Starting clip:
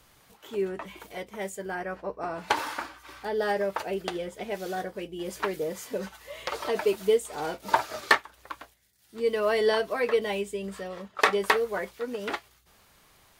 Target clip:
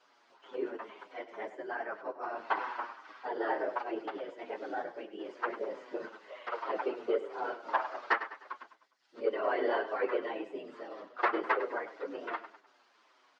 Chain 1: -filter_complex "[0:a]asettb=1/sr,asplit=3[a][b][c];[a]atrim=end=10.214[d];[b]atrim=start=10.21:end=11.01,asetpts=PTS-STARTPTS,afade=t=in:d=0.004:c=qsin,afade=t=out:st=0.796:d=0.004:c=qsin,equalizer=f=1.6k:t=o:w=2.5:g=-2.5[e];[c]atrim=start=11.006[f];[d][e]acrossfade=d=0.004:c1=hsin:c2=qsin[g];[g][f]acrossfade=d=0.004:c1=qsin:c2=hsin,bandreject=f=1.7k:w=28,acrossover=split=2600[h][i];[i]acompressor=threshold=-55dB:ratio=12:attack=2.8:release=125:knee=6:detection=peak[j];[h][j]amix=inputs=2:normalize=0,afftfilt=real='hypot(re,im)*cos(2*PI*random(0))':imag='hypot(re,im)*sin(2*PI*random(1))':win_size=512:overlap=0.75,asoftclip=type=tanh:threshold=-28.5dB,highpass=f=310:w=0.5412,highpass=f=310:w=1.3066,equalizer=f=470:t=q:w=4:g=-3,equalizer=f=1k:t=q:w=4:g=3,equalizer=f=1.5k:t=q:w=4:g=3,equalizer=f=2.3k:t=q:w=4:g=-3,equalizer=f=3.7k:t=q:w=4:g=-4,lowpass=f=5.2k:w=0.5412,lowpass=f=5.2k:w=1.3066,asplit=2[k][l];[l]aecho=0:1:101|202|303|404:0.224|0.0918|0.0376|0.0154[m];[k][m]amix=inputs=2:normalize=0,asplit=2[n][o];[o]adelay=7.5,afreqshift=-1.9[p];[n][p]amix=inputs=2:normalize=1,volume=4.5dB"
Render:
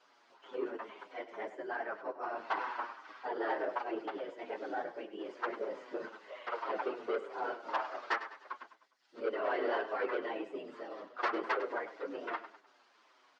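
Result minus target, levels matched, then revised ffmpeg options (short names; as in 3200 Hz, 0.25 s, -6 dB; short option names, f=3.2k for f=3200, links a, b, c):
soft clip: distortion +11 dB
-filter_complex "[0:a]asettb=1/sr,asplit=3[a][b][c];[a]atrim=end=10.214[d];[b]atrim=start=10.21:end=11.01,asetpts=PTS-STARTPTS,afade=t=in:d=0.004:c=qsin,afade=t=out:st=0.796:d=0.004:c=qsin,equalizer=f=1.6k:t=o:w=2.5:g=-2.5[e];[c]atrim=start=11.006[f];[d][e]acrossfade=d=0.004:c1=hsin:c2=qsin[g];[g][f]acrossfade=d=0.004:c1=qsin:c2=hsin,bandreject=f=1.7k:w=28,acrossover=split=2600[h][i];[i]acompressor=threshold=-55dB:ratio=12:attack=2.8:release=125:knee=6:detection=peak[j];[h][j]amix=inputs=2:normalize=0,afftfilt=real='hypot(re,im)*cos(2*PI*random(0))':imag='hypot(re,im)*sin(2*PI*random(1))':win_size=512:overlap=0.75,asoftclip=type=tanh:threshold=-18dB,highpass=f=310:w=0.5412,highpass=f=310:w=1.3066,equalizer=f=470:t=q:w=4:g=-3,equalizer=f=1k:t=q:w=4:g=3,equalizer=f=1.5k:t=q:w=4:g=3,equalizer=f=2.3k:t=q:w=4:g=-3,equalizer=f=3.7k:t=q:w=4:g=-4,lowpass=f=5.2k:w=0.5412,lowpass=f=5.2k:w=1.3066,asplit=2[k][l];[l]aecho=0:1:101|202|303|404:0.224|0.0918|0.0376|0.0154[m];[k][m]amix=inputs=2:normalize=0,asplit=2[n][o];[o]adelay=7.5,afreqshift=-1.9[p];[n][p]amix=inputs=2:normalize=1,volume=4.5dB"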